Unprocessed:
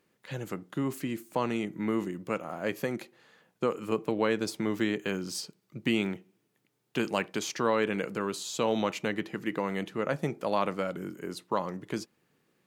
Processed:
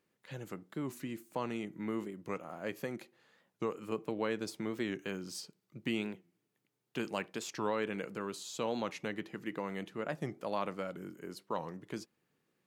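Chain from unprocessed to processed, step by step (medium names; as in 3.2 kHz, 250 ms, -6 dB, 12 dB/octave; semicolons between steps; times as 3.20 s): warped record 45 rpm, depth 160 cents; trim -7.5 dB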